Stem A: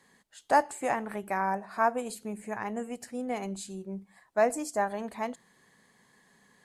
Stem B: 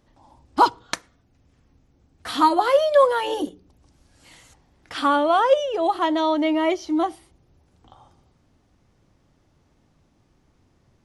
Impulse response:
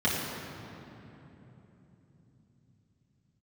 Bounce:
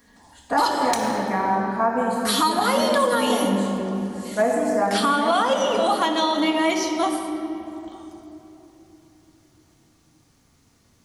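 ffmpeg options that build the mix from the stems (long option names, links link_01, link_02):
-filter_complex "[0:a]volume=-1.5dB,asplit=2[link_01][link_02];[link_02]volume=-5.5dB[link_03];[1:a]crystalizer=i=8.5:c=0,aeval=exprs='clip(val(0),-1,0.631)':channel_layout=same,volume=-4.5dB,asplit=2[link_04][link_05];[link_05]volume=-14.5dB[link_06];[2:a]atrim=start_sample=2205[link_07];[link_03][link_06]amix=inputs=2:normalize=0[link_08];[link_08][link_07]afir=irnorm=-1:irlink=0[link_09];[link_01][link_04][link_09]amix=inputs=3:normalize=0,alimiter=limit=-10.5dB:level=0:latency=1:release=140"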